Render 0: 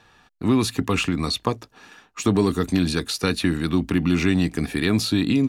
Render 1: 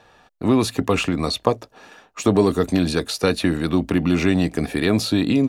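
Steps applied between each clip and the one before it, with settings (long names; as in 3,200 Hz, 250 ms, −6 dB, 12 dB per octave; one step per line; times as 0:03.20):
parametric band 590 Hz +10.5 dB 0.95 octaves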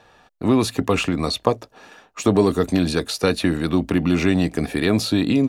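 no processing that can be heard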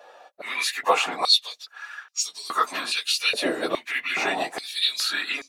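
random phases in long frames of 50 ms
high-pass on a step sequencer 2.4 Hz 580–5,200 Hz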